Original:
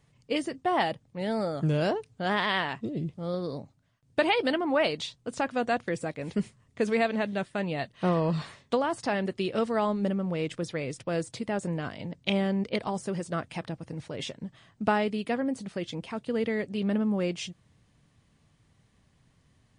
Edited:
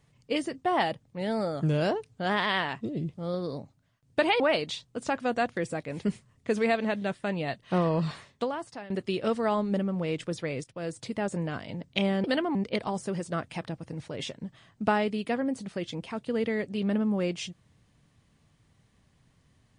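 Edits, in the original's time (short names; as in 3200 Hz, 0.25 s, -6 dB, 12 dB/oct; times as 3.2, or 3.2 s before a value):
4.4–4.71 move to 12.55
8.44–9.21 fade out linear, to -18.5 dB
10.95–11.43 fade in, from -13 dB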